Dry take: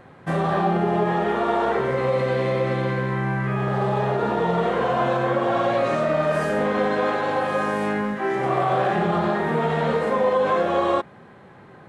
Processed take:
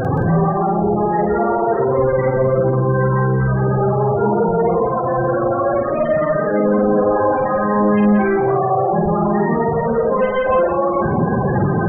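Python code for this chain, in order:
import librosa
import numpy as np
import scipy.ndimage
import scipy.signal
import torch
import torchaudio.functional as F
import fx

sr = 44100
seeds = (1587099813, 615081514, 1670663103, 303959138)

p1 = np.sign(x) * np.sqrt(np.mean(np.square(x)))
p2 = fx.low_shelf(p1, sr, hz=170.0, db=4.5)
p3 = fx.fuzz(p2, sr, gain_db=46.0, gate_db=-54.0)
p4 = p2 + (p3 * librosa.db_to_amplitude(-8.5))
p5 = fx.spec_topn(p4, sr, count=16)
p6 = fx.doubler(p5, sr, ms=48.0, db=-4.0)
y = p6 + fx.echo_single(p6, sr, ms=174, db=-10.0, dry=0)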